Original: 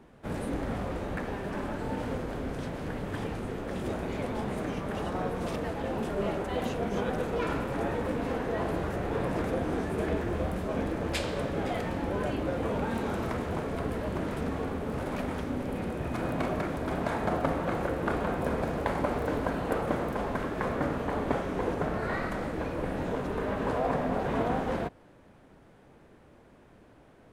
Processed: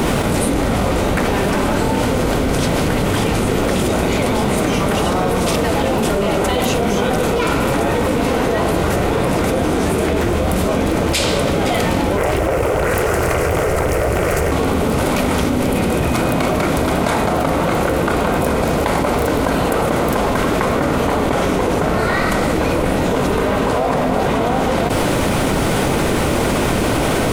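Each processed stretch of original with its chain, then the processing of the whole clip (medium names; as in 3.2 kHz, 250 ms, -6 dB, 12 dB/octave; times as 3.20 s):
12.17–14.52 s: static phaser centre 910 Hz, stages 6 + loudspeaker Doppler distortion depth 0.81 ms
whole clip: treble shelf 3.2 kHz +11.5 dB; band-stop 1.7 kHz, Q 9.3; level flattener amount 100%; trim +7.5 dB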